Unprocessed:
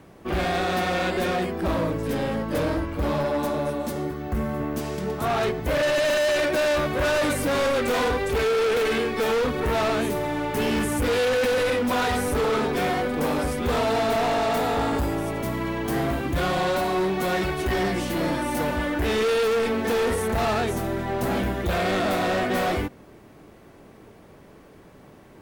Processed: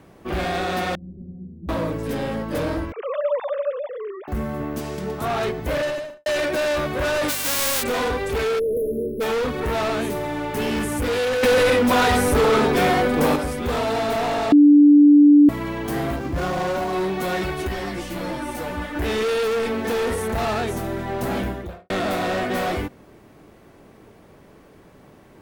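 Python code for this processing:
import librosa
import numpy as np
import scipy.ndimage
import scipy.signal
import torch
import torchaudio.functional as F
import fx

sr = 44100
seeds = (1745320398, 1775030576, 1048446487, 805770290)

y = fx.ladder_lowpass(x, sr, hz=220.0, resonance_pct=35, at=(0.95, 1.69))
y = fx.sine_speech(y, sr, at=(2.92, 4.28))
y = fx.studio_fade_out(y, sr, start_s=5.72, length_s=0.54)
y = fx.envelope_flatten(y, sr, power=0.1, at=(7.28, 7.82), fade=0.02)
y = fx.brickwall_bandstop(y, sr, low_hz=650.0, high_hz=10000.0, at=(8.58, 9.2), fade=0.02)
y = fx.median_filter(y, sr, points=15, at=(16.16, 16.93))
y = fx.ensemble(y, sr, at=(17.67, 18.94), fade=0.02)
y = fx.studio_fade_out(y, sr, start_s=21.39, length_s=0.51)
y = fx.edit(y, sr, fx.clip_gain(start_s=11.43, length_s=1.93, db=6.0),
    fx.bleep(start_s=14.52, length_s=0.97, hz=292.0, db=-7.5), tone=tone)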